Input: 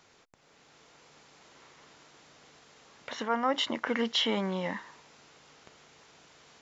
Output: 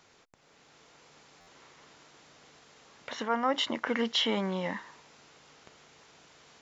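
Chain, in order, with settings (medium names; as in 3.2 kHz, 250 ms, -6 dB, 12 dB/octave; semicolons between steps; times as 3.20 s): buffer glitch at 1.40 s, samples 512, times 5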